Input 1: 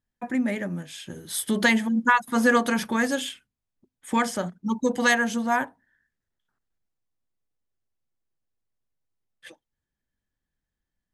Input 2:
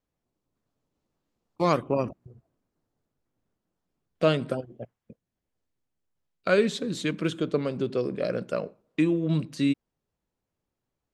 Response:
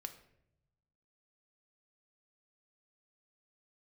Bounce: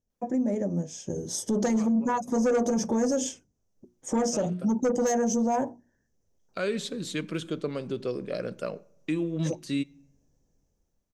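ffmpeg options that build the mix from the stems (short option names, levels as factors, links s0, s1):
-filter_complex "[0:a]bandreject=f=60:t=h:w=6,bandreject=f=120:t=h:w=6,bandreject=f=180:t=h:w=6,bandreject=f=240:t=h:w=6,bandreject=f=300:t=h:w=6,bandreject=f=360:t=h:w=6,dynaudnorm=f=420:g=5:m=5.62,firequalizer=gain_entry='entry(300,0);entry(480,5);entry(1400,-20);entry(4000,-20);entry(5900,5);entry(9800,-22)':delay=0.05:min_phase=1,volume=1.33,asplit=2[s0][s1];[1:a]highshelf=f=5000:g=6.5,adelay=100,volume=0.531,asplit=2[s2][s3];[s3]volume=0.299[s4];[s1]apad=whole_len=495335[s5];[s2][s5]sidechaincompress=threshold=0.0316:ratio=8:attack=45:release=594[s6];[2:a]atrim=start_sample=2205[s7];[s4][s7]afir=irnorm=-1:irlink=0[s8];[s0][s6][s8]amix=inputs=3:normalize=0,asoftclip=type=tanh:threshold=0.355,alimiter=limit=0.106:level=0:latency=1:release=102"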